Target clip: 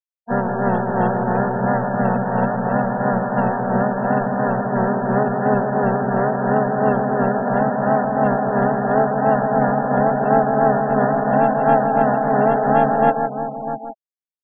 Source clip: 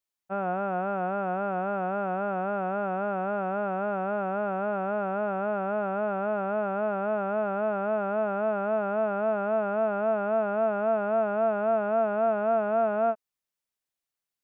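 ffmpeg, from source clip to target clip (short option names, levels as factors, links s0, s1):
-filter_complex "[0:a]tremolo=f=2.9:d=0.66,asplit=2[s0][s1];[s1]adelay=641.4,volume=0.355,highshelf=f=4000:g=-14.4[s2];[s0][s2]amix=inputs=2:normalize=0,asplit=2[s3][s4];[s4]adynamicsmooth=sensitivity=3.5:basefreq=570,volume=1.33[s5];[s3][s5]amix=inputs=2:normalize=0,asplit=4[s6][s7][s8][s9];[s7]asetrate=29433,aresample=44100,atempo=1.49831,volume=0.562[s10];[s8]asetrate=52444,aresample=44100,atempo=0.840896,volume=0.794[s11];[s9]asetrate=55563,aresample=44100,atempo=0.793701,volume=0.562[s12];[s6][s10][s11][s12]amix=inputs=4:normalize=0,asplit=2[s13][s14];[s14]aecho=0:1:160:0.501[s15];[s13][s15]amix=inputs=2:normalize=0,afftfilt=real='re*gte(hypot(re,im),0.0398)':imag='im*gte(hypot(re,im),0.0398)':win_size=1024:overlap=0.75,bass=f=250:g=7,treble=f=4000:g=-4"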